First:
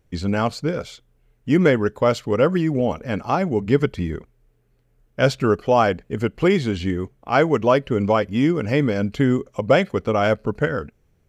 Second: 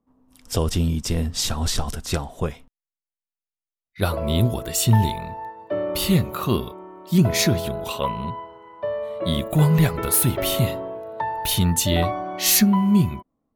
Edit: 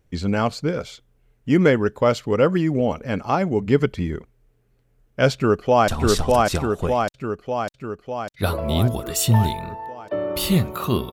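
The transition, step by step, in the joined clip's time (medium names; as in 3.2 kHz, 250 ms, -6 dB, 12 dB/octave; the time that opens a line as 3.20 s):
first
5.34–5.88 s: echo throw 600 ms, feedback 65%, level -1 dB
5.88 s: go over to second from 1.47 s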